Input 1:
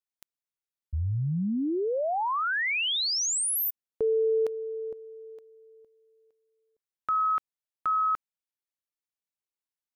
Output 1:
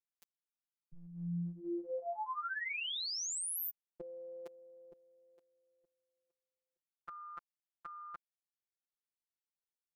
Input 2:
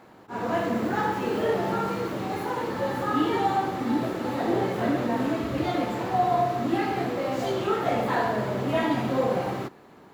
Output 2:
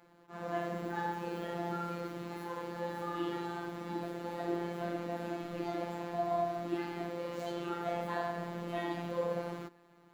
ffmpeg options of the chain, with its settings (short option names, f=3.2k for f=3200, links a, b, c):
-af "afftfilt=real='hypot(re,im)*cos(PI*b)':imag='0':win_size=1024:overlap=0.75,volume=-8dB"